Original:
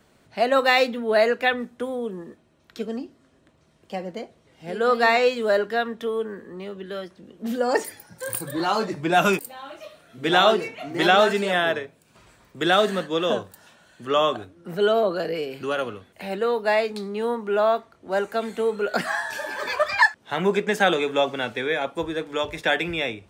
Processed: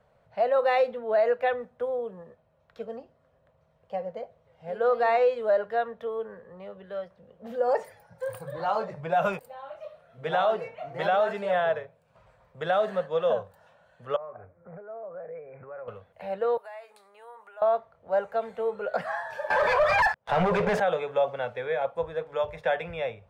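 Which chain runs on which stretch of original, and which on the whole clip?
14.16–15.88 s: Chebyshev low-pass 2.4 kHz, order 8 + compression 12:1, threshold -34 dBFS
16.57–17.62 s: resonant high shelf 6.8 kHz +10.5 dB, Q 1.5 + compression 16:1, threshold -29 dBFS + high-pass 990 Hz
19.50–20.80 s: waveshaping leveller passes 5 + treble shelf 11 kHz -9 dB
whole clip: FFT filter 150 Hz 0 dB, 330 Hz -20 dB, 510 Hz +6 dB, 7.4 kHz -18 dB; peak limiter -11.5 dBFS; trim -4 dB

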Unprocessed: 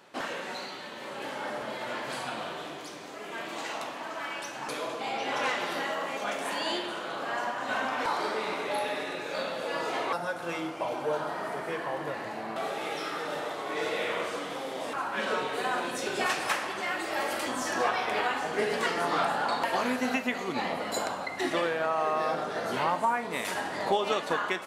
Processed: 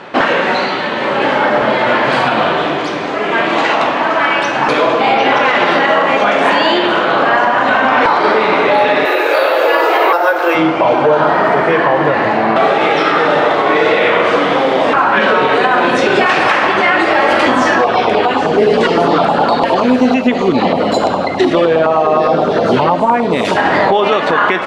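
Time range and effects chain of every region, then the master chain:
9.05–10.55 s: steep high-pass 310 Hz 72 dB/octave + band-stop 3.5 kHz, Q 21 + careless resampling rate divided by 3×, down none, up zero stuff
17.84–23.57 s: peaking EQ 1.9 kHz -9.5 dB 1.1 oct + LFO notch saw down 9.7 Hz 640–2200 Hz
whole clip: low-pass 2.9 kHz 12 dB/octave; compression 1.5:1, threshold -35 dBFS; loudness maximiser +26 dB; trim -1 dB

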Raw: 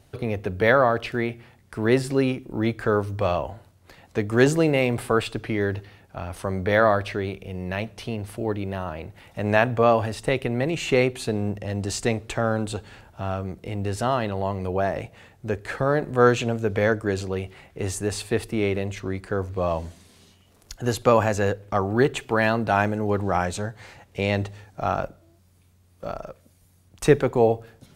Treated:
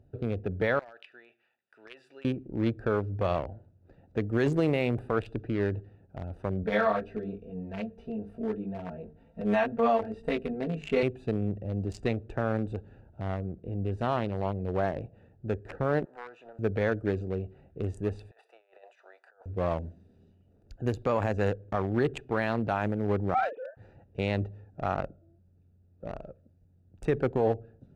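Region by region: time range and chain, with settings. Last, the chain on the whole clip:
0.79–2.25 s: high-pass 1.4 kHz + peaking EQ 2.9 kHz +7 dB 1.1 oct + compression 3:1, threshold -31 dBFS
6.63–11.03 s: hum notches 50/100/150/200/250/300/350/400/450 Hz + comb 4.4 ms, depth 100% + chorus 2.2 Hz, delay 17.5 ms, depth 2.2 ms
16.05–16.59 s: resonant high-pass 930 Hz, resonance Q 2.1 + compression 2.5:1, threshold -35 dBFS + loudspeaker Doppler distortion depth 0.22 ms
18.31–19.46 s: steep high-pass 680 Hz + compressor with a negative ratio -41 dBFS, ratio -0.5
23.34–23.77 s: formants replaced by sine waves + doubling 47 ms -5.5 dB
whole clip: local Wiener filter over 41 samples; treble shelf 7.1 kHz -8 dB; peak limiter -12.5 dBFS; trim -3 dB

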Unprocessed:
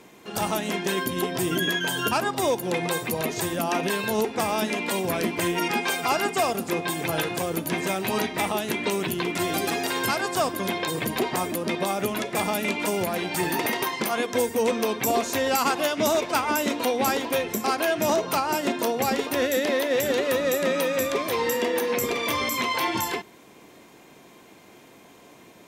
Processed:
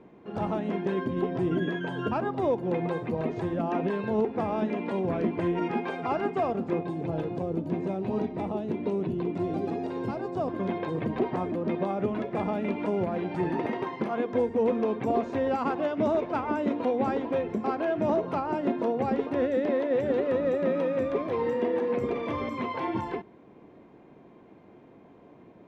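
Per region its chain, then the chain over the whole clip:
6.83–10.48 s: peaking EQ 1.7 kHz -9.5 dB 1.7 oct + band-stop 3.2 kHz, Q 26
whole clip: low-pass 2.8 kHz 12 dB/octave; tilt shelf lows +8.5 dB, about 1.2 kHz; trim -7.5 dB

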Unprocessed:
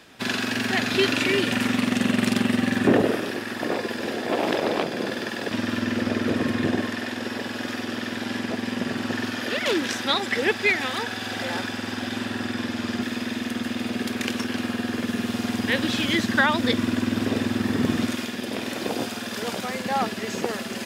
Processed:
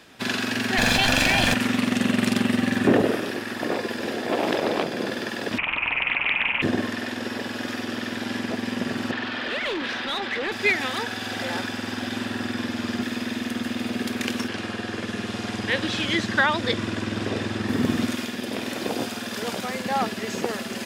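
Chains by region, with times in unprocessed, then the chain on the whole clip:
0.78–1.54 s: comb filter that takes the minimum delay 1.2 ms + level flattener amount 100%
5.58–6.62 s: frequency inversion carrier 2.7 kHz + loudspeaker Doppler distortion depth 0.47 ms
9.11–10.52 s: overload inside the chain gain 24.5 dB + resonant high shelf 5.6 kHz -11 dB, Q 1.5 + overdrive pedal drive 9 dB, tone 2.5 kHz, clips at -19 dBFS
14.48–17.69 s: Bessel low-pass 8.1 kHz, order 4 + peaking EQ 250 Hz -11.5 dB 0.21 oct
whole clip: none

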